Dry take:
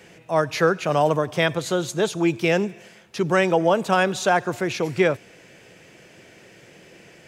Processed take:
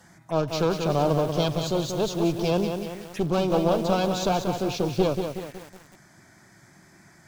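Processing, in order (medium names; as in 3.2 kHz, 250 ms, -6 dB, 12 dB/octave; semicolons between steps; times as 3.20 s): one-sided clip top -28.5 dBFS; touch-sensitive phaser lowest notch 390 Hz, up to 1.9 kHz, full sweep at -27.5 dBFS; bit-crushed delay 186 ms, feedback 55%, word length 7-bit, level -6 dB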